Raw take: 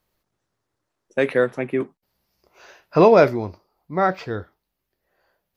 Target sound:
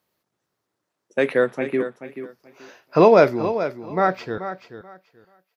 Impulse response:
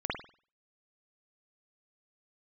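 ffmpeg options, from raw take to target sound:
-af "asetnsamples=n=441:p=0,asendcmd='4.38 highpass f 980',highpass=140,aecho=1:1:433|866|1299:0.282|0.0564|0.0113"

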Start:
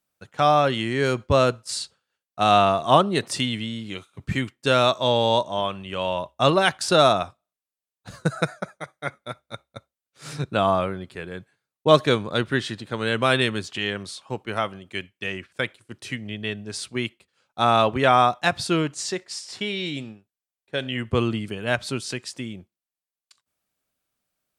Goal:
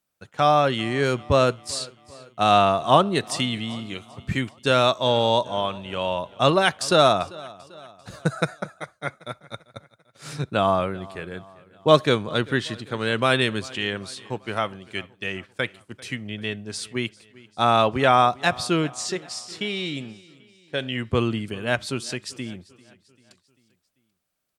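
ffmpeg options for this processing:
-af "aecho=1:1:393|786|1179|1572:0.0794|0.0413|0.0215|0.0112"

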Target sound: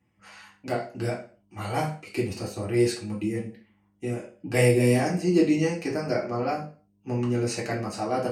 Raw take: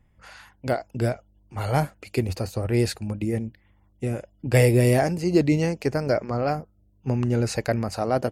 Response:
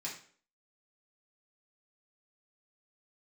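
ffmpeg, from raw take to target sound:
-filter_complex "[0:a]highpass=82[a];[1:a]atrim=start_sample=2205,afade=t=out:st=0.43:d=0.01,atrim=end_sample=19404,asetrate=52920,aresample=44100[b];[a][b]afir=irnorm=-1:irlink=0"

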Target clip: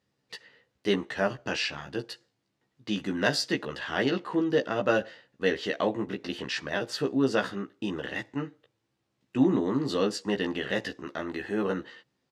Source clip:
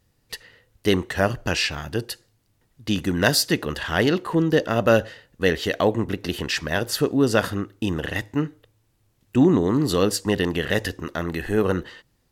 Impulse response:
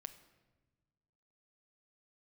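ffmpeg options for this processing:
-filter_complex "[0:a]highpass=170,lowpass=5.5k,asplit=2[a][b];[b]adelay=15,volume=-3.5dB[c];[a][c]amix=inputs=2:normalize=0,volume=-7.5dB"

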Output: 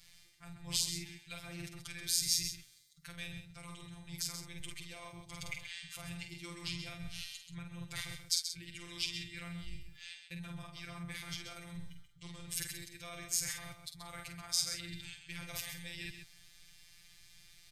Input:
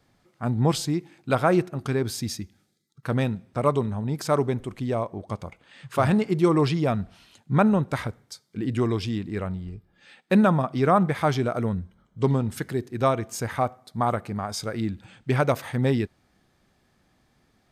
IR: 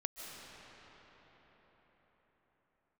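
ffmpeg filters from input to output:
-filter_complex "[0:a]equalizer=f=5.1k:t=o:w=2.8:g=5,acrossover=split=550[a][b];[b]alimiter=limit=-17.5dB:level=0:latency=1:release=314[c];[a][c]amix=inputs=2:normalize=0,asplit=2[d][e];[e]adelay=48,volume=-6dB[f];[d][f]amix=inputs=2:normalize=0,areverse,acompressor=threshold=-35dB:ratio=12,areverse,afftfilt=real='hypot(re,im)*cos(PI*b)':imag='0':win_size=1024:overlap=0.75,firequalizer=gain_entry='entry(110,0);entry(210,-28);entry(1200,-19);entry(2200,-4);entry(12000,1)':delay=0.05:min_phase=1,aecho=1:1:131:0.376,volume=13dB"

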